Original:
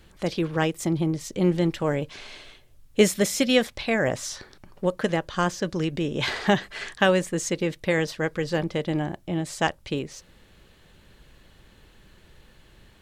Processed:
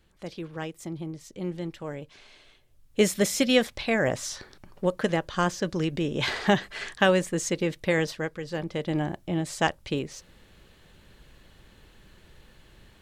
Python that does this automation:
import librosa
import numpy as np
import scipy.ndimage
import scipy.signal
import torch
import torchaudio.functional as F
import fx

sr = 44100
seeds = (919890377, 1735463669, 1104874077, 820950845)

y = fx.gain(x, sr, db=fx.line((2.36, -11.0), (3.23, -1.0), (8.1, -1.0), (8.4, -8.5), (9.01, -0.5)))